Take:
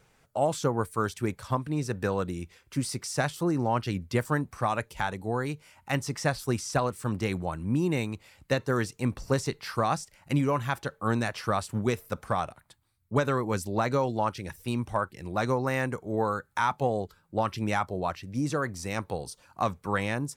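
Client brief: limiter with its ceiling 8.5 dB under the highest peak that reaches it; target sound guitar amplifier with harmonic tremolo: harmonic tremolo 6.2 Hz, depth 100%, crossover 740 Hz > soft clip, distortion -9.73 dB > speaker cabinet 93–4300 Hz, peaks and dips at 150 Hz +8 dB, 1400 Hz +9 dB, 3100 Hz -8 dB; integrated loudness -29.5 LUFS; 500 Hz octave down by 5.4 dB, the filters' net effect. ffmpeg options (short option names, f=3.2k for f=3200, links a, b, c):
-filter_complex "[0:a]equalizer=f=500:t=o:g=-7,alimiter=limit=-23dB:level=0:latency=1,acrossover=split=740[a][b];[a]aeval=exprs='val(0)*(1-1/2+1/2*cos(2*PI*6.2*n/s))':c=same[c];[b]aeval=exprs='val(0)*(1-1/2-1/2*cos(2*PI*6.2*n/s))':c=same[d];[c][d]amix=inputs=2:normalize=0,asoftclip=threshold=-35dB,highpass=93,equalizer=f=150:t=q:w=4:g=8,equalizer=f=1.4k:t=q:w=4:g=9,equalizer=f=3.1k:t=q:w=4:g=-8,lowpass=f=4.3k:w=0.5412,lowpass=f=4.3k:w=1.3066,volume=11.5dB"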